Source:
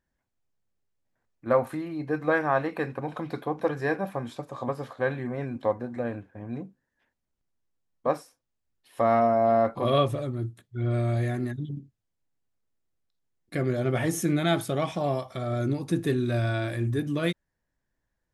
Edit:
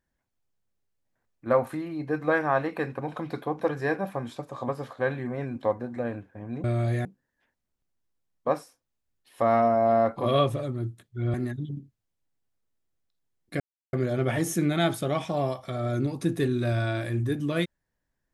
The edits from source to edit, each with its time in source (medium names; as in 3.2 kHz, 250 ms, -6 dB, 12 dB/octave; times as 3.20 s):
10.93–11.34 s: move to 6.64 s
13.60 s: insert silence 0.33 s